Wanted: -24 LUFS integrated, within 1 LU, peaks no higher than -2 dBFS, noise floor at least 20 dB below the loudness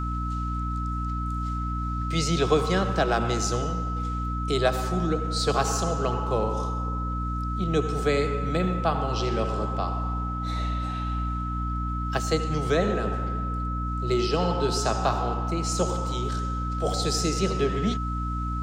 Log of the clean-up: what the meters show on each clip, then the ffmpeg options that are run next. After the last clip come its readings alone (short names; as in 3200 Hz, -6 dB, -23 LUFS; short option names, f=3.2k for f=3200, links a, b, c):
hum 60 Hz; harmonics up to 300 Hz; hum level -27 dBFS; steady tone 1300 Hz; tone level -32 dBFS; loudness -27.0 LUFS; peak -8.0 dBFS; loudness target -24.0 LUFS
-> -af "bandreject=f=60:t=h:w=6,bandreject=f=120:t=h:w=6,bandreject=f=180:t=h:w=6,bandreject=f=240:t=h:w=6,bandreject=f=300:t=h:w=6"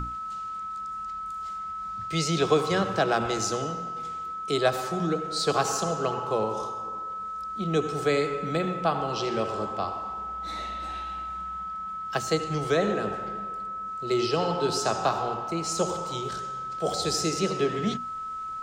hum none; steady tone 1300 Hz; tone level -32 dBFS
-> -af "bandreject=f=1.3k:w=30"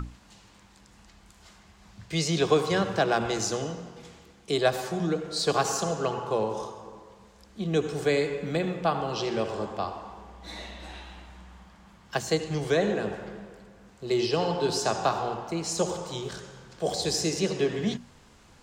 steady tone none; loudness -28.0 LUFS; peak -9.5 dBFS; loudness target -24.0 LUFS
-> -af "volume=4dB"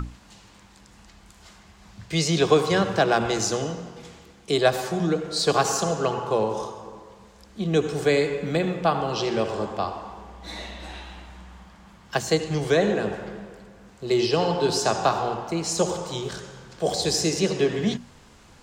loudness -24.0 LUFS; peak -5.5 dBFS; noise floor -52 dBFS